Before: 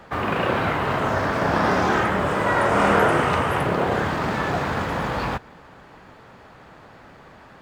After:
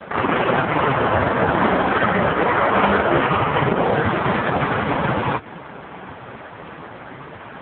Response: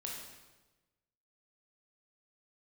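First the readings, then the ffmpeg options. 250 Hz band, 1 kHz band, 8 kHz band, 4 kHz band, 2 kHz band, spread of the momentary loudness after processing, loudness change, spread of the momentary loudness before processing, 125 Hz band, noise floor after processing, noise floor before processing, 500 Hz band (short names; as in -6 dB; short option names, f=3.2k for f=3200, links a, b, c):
+3.0 dB, +3.0 dB, under -40 dB, +2.0 dB, +3.0 dB, 20 LU, +3.0 dB, 7 LU, +2.5 dB, -38 dBFS, -47 dBFS, +3.0 dB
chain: -filter_complex "[0:a]asplit=2[a][b];[b]acompressor=threshold=-31dB:ratio=8,volume=2.5dB[c];[a][c]amix=inputs=2:normalize=0,asoftclip=type=tanh:threshold=-12.5dB,volume=7.5dB" -ar 8000 -c:a libopencore_amrnb -b:a 4750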